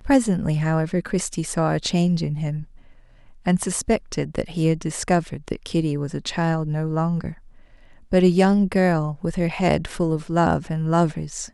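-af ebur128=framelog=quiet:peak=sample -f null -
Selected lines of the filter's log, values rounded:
Integrated loudness:
  I:         -22.3 LUFS
  Threshold: -32.8 LUFS
Loudness range:
  LRA:         4.1 LU
  Threshold: -43.0 LUFS
  LRA low:   -24.9 LUFS
  LRA high:  -20.8 LUFS
Sample peak:
  Peak:       -3.7 dBFS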